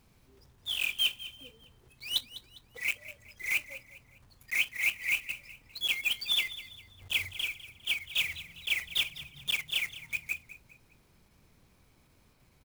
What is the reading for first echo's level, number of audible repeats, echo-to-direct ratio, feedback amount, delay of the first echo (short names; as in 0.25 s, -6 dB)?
-15.5 dB, 3, -15.0 dB, 38%, 0.202 s